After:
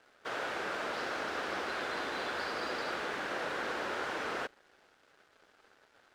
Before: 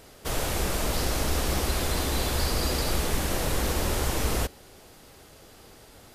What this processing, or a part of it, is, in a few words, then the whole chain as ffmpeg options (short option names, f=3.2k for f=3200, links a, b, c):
pocket radio on a weak battery: -af "highpass=370,lowpass=3.2k,aeval=exprs='sgn(val(0))*max(abs(val(0))-0.00158,0)':c=same,equalizer=f=1.5k:t=o:w=0.54:g=8.5,volume=-5dB"